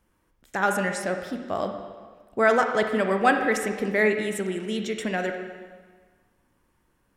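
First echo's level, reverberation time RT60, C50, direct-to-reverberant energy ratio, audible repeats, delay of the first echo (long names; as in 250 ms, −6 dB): no echo audible, 1.5 s, 5.5 dB, 4.5 dB, no echo audible, no echo audible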